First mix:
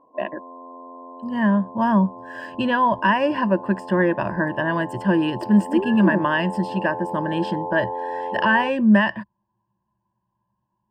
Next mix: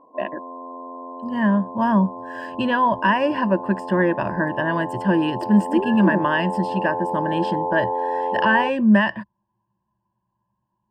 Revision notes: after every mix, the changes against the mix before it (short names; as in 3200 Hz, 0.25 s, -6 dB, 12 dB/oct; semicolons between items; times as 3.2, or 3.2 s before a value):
background +4.5 dB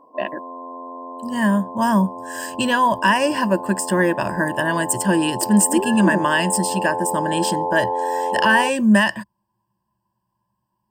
master: remove air absorption 360 m